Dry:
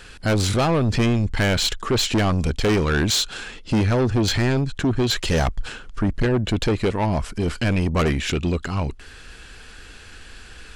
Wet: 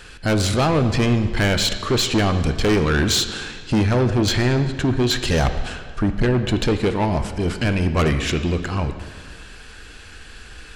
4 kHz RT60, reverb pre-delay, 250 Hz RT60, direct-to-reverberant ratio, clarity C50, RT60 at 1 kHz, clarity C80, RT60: 1.6 s, 3 ms, 1.7 s, 8.0 dB, 9.5 dB, 1.8 s, 10.5 dB, 1.8 s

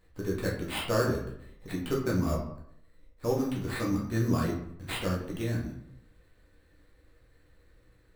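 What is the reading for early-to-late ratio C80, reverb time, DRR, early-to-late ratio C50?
9.0 dB, 0.70 s, -3.5 dB, 5.5 dB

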